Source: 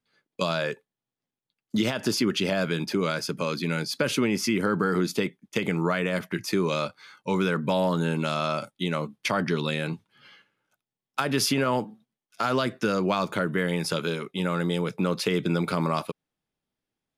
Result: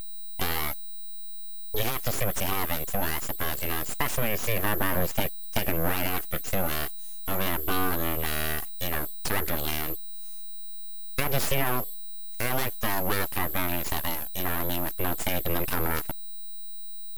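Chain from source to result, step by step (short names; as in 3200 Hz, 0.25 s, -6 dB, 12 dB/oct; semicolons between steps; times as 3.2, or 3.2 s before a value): phaser 0.18 Hz, delay 2.3 ms, feedback 22%; whine 12000 Hz -31 dBFS; full-wave rectifier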